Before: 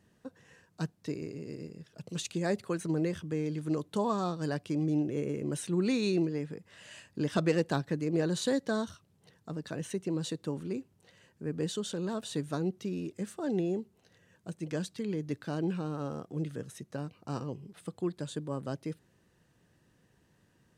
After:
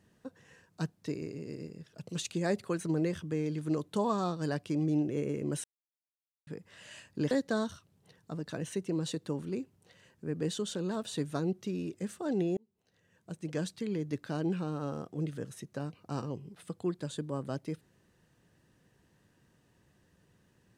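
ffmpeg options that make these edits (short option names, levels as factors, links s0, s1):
-filter_complex "[0:a]asplit=5[s0][s1][s2][s3][s4];[s0]atrim=end=5.64,asetpts=PTS-STARTPTS,afade=t=out:st=5.636:d=0.004:c=hsin[s5];[s1]atrim=start=5.64:end=6.47,asetpts=PTS-STARTPTS,volume=0[s6];[s2]atrim=start=6.47:end=7.312,asetpts=PTS-STARTPTS,afade=t=in:d=0.004:c=hsin[s7];[s3]atrim=start=8.488:end=13.75,asetpts=PTS-STARTPTS,afade=t=out:st=5.258:d=0.004:c=hsin[s8];[s4]atrim=start=13.75,asetpts=PTS-STARTPTS,afade=t=in:d=0.94[s9];[s5][s6][s7]concat=n=3:v=0:a=1[s10];[s8][s9]concat=n=2:v=0:a=1[s11];[s10][s11]acrossfade=d=0.004:c1=hsin:c2=hsin"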